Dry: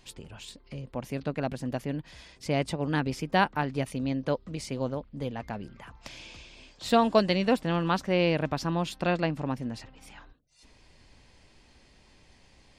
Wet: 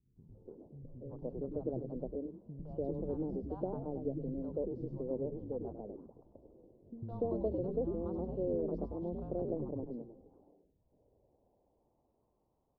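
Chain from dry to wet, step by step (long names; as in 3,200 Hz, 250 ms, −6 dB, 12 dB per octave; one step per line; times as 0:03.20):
Butterworth band-reject 2,100 Hz, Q 0.62
low-shelf EQ 240 Hz +10 dB
downward compressor, threshold −23 dBFS, peak gain reduction 9.5 dB
band-pass filter sweep 450 Hz → 1,200 Hz, 0:10.09–0:12.30
on a send: echo with shifted repeats 98 ms, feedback 34%, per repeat −120 Hz, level −4.5 dB
on the sum: low-pass that shuts in the quiet parts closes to 630 Hz, open at −32 dBFS
head-to-tape spacing loss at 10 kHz 28 dB
three-band delay without the direct sound lows, highs, mids 160/290 ms, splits 200/840 Hz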